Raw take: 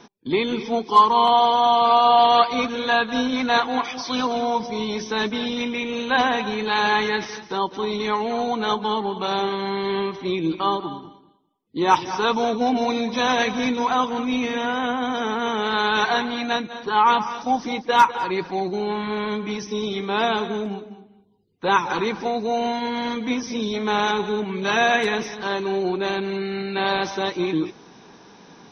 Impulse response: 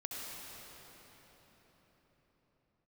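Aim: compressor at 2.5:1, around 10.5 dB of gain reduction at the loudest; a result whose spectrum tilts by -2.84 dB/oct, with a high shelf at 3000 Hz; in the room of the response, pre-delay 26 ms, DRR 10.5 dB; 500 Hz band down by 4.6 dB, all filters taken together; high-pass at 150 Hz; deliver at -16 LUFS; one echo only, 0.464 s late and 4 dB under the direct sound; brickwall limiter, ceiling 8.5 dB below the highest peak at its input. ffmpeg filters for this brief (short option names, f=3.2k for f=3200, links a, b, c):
-filter_complex "[0:a]highpass=150,equalizer=f=500:t=o:g=-6,highshelf=f=3k:g=-6,acompressor=threshold=-27dB:ratio=2.5,alimiter=limit=-22dB:level=0:latency=1,aecho=1:1:464:0.631,asplit=2[a][b];[1:a]atrim=start_sample=2205,adelay=26[c];[b][c]afir=irnorm=-1:irlink=0,volume=-11.5dB[d];[a][d]amix=inputs=2:normalize=0,volume=14dB"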